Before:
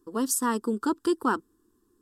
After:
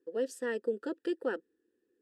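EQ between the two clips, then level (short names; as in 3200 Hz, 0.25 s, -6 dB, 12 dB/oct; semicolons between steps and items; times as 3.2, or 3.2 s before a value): vowel filter e; +7.5 dB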